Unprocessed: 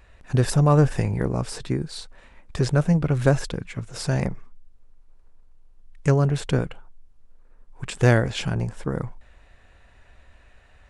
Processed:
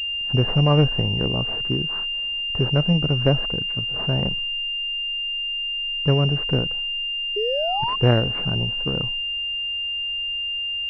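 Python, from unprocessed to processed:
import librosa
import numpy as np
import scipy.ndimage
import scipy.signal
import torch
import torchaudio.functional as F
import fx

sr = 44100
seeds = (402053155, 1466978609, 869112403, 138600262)

y = fx.spec_paint(x, sr, seeds[0], shape='rise', start_s=7.36, length_s=0.6, low_hz=400.0, high_hz=1100.0, level_db=-24.0)
y = fx.pwm(y, sr, carrier_hz=2800.0)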